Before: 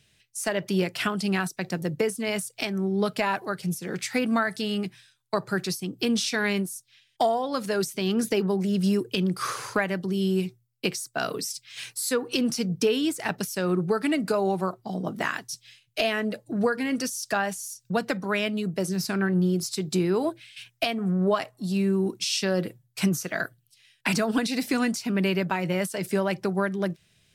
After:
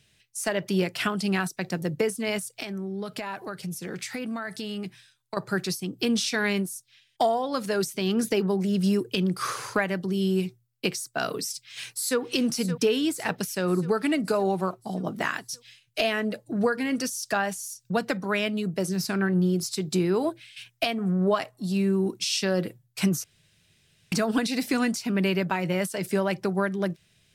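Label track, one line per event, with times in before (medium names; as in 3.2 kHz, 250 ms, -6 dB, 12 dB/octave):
2.380000	5.370000	compression 4:1, threshold -30 dBFS
11.530000	12.200000	echo throw 570 ms, feedback 60%, level -11.5 dB
23.240000	24.120000	room tone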